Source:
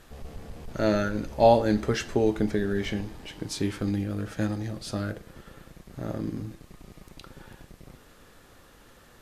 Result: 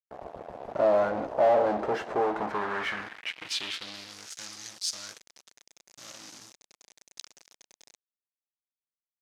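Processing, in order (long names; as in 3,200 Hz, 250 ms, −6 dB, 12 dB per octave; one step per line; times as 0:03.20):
fuzz pedal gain 34 dB, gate −41 dBFS
band-pass filter sweep 690 Hz → 6,000 Hz, 0:02.19–0:04.25
level −2.5 dB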